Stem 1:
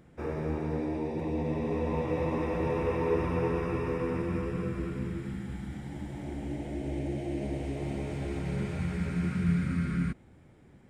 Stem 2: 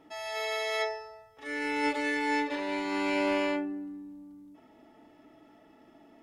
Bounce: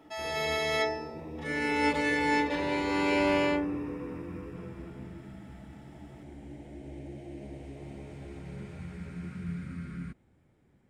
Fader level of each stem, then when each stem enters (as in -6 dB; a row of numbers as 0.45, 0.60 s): -9.5, +2.0 dB; 0.00, 0.00 s